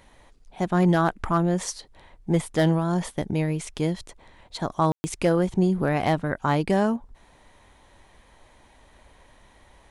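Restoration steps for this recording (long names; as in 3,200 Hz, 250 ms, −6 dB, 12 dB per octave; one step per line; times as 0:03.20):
clipped peaks rebuilt −11.5 dBFS
ambience match 0:04.92–0:05.04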